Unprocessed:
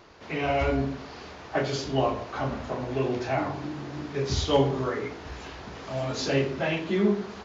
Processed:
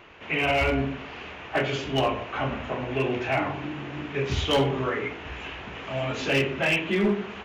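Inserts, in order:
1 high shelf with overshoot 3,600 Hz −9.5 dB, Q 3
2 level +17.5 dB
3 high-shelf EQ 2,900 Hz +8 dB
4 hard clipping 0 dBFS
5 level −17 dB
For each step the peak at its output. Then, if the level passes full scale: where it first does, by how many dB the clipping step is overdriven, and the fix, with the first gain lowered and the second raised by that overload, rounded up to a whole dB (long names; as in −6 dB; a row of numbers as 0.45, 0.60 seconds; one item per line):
−10.0, +7.5, +9.0, 0.0, −17.0 dBFS
step 2, 9.0 dB
step 2 +8.5 dB, step 5 −8 dB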